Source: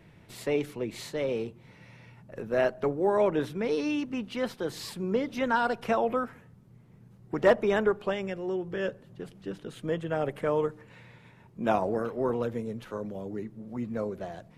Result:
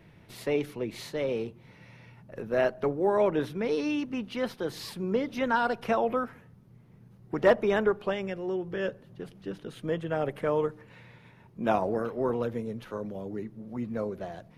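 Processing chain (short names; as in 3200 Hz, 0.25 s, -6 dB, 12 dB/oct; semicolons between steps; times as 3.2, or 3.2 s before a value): bell 7600 Hz -6.5 dB 0.32 oct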